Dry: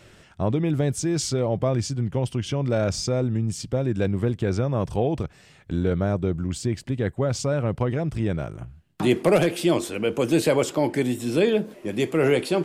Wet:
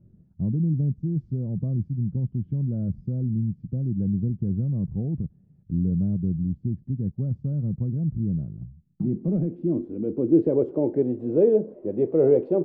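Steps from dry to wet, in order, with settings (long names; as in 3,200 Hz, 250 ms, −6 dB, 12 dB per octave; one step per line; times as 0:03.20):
low-pass filter sweep 190 Hz → 500 Hz, 0:09.10–0:11.08
level −4 dB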